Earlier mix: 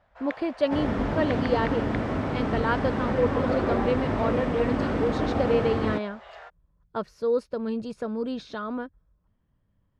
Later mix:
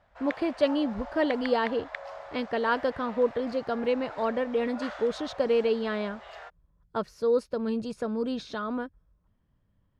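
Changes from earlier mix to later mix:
second sound: muted; master: add high shelf 5700 Hz +6.5 dB

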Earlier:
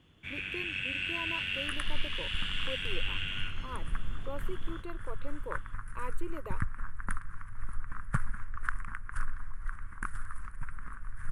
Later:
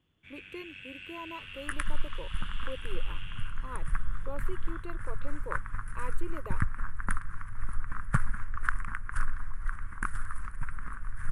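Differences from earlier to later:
first sound -11.5 dB; second sound +4.0 dB

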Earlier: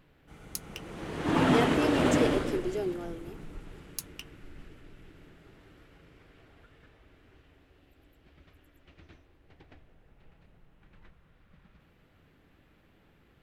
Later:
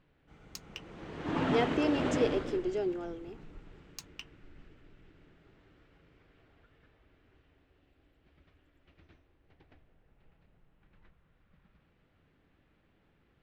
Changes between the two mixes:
background -6.5 dB; master: add running mean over 4 samples

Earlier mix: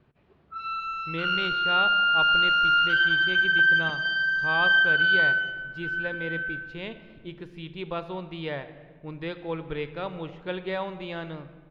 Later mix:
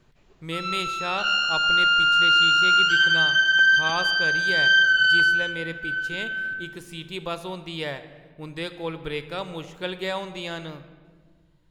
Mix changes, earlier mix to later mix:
speech: entry -0.65 s; master: remove air absorption 340 m

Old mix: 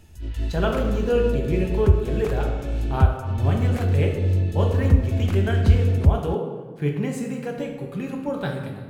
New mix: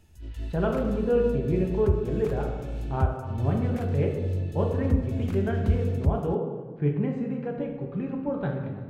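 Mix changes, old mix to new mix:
speech: add tape spacing loss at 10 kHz 44 dB; background -8.0 dB

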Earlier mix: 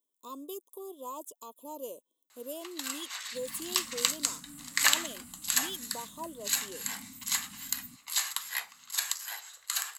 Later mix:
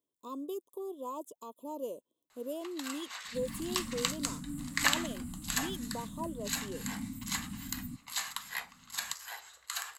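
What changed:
second sound +6.0 dB; master: add tilt -2.5 dB/oct

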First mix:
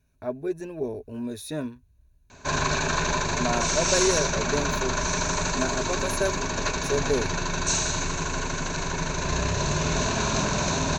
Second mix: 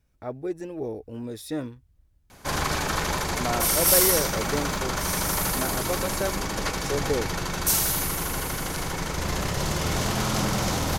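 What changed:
background: remove brick-wall FIR low-pass 8200 Hz; master: remove ripple EQ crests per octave 1.5, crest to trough 10 dB

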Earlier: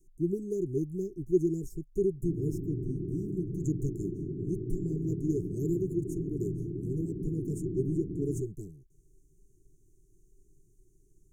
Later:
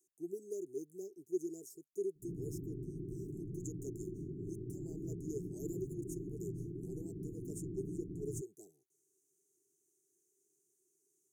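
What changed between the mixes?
speech: add resonant high-pass 780 Hz, resonance Q 3.4; background -8.0 dB

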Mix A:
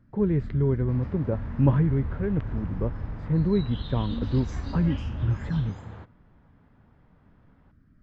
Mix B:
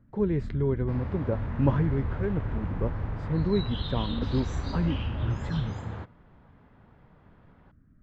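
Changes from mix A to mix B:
speech: add tone controls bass -5 dB, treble +8 dB; first sound: add air absorption 490 m; second sound +5.0 dB

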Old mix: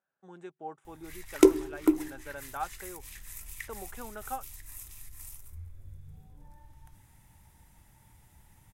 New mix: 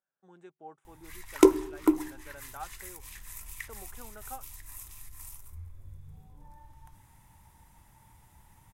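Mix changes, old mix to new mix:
speech -6.5 dB; background: add bell 1000 Hz +7.5 dB 0.56 oct

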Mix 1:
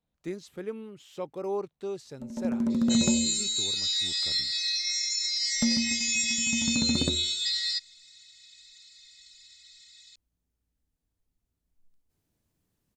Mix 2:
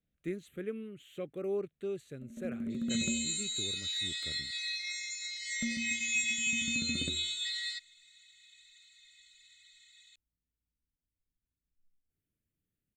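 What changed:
first sound -9.5 dB; master: add fixed phaser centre 2200 Hz, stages 4

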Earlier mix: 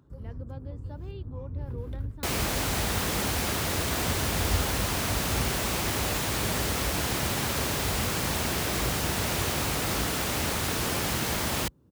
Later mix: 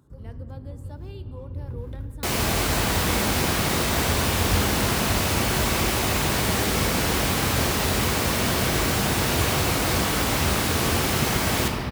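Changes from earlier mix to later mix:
speech: remove air absorption 150 m; reverb: on, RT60 2.3 s

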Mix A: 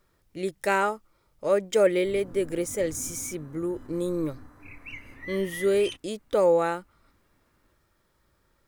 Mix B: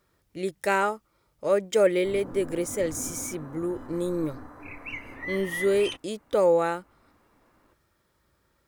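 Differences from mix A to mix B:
speech: add HPF 45 Hz; background: add bell 690 Hz +11.5 dB 2.8 oct

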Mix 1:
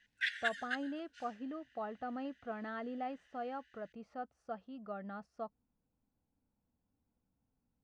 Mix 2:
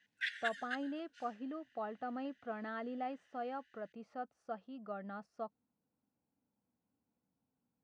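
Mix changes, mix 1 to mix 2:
background -3.0 dB; master: add HPF 150 Hz 12 dB/oct

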